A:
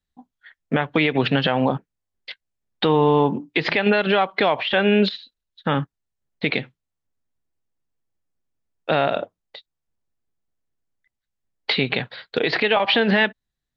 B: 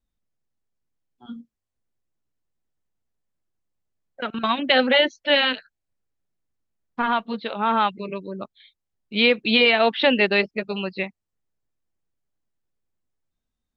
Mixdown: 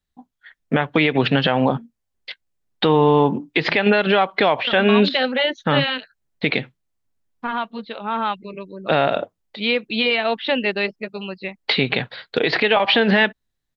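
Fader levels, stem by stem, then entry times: +2.0, -2.5 dB; 0.00, 0.45 s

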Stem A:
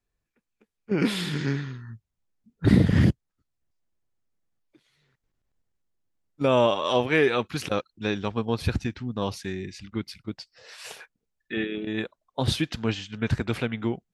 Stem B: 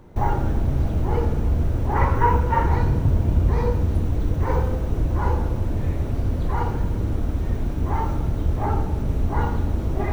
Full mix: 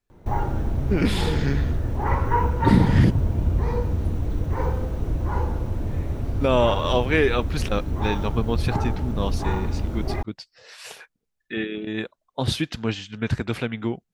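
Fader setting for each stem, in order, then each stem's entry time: +1.0, -3.0 dB; 0.00, 0.10 s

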